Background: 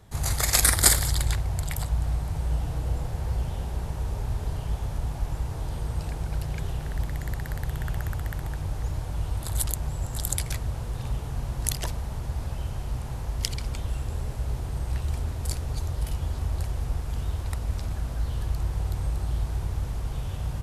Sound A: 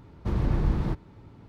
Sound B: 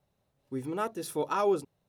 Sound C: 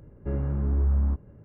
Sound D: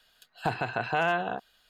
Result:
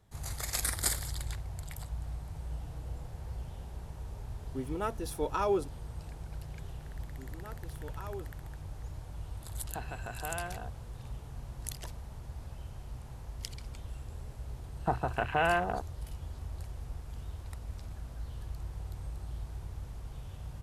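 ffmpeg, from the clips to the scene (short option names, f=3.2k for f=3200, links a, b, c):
-filter_complex "[2:a]asplit=2[a][b];[4:a]asplit=2[c][d];[0:a]volume=-12.5dB[e];[d]afwtdn=0.0282[f];[a]atrim=end=1.88,asetpts=PTS-STARTPTS,volume=-2.5dB,afade=t=in:d=0.004:c=hsin,afade=t=out:st=1.876:d=0.004:c=hsin,adelay=4030[g];[b]atrim=end=1.88,asetpts=PTS-STARTPTS,volume=-16.5dB,afade=t=in:d=0.004:c=hsin,afade=t=out:st=1.876:d=0.004:c=hsin,adelay=293706S[h];[c]atrim=end=1.69,asetpts=PTS-STARTPTS,volume=-12.5dB,afade=t=in:d=0.004:c=hsin,afade=t=out:st=1.686:d=0.004:c=hsin,adelay=410130S[i];[f]atrim=end=1.69,asetpts=PTS-STARTPTS,volume=-1dB,afade=t=in:d=0.004:c=hsin,afade=t=out:st=1.686:d=0.004:c=hsin,adelay=14420[j];[e][g][h][i][j]amix=inputs=5:normalize=0"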